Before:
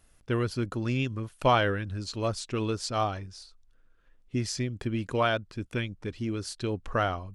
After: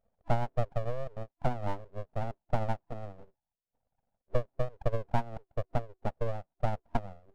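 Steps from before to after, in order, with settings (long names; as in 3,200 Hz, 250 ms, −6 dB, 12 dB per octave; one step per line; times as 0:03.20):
brick-wall band-pass 190–500 Hz
full-wave rectification
transient designer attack +8 dB, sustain −8 dB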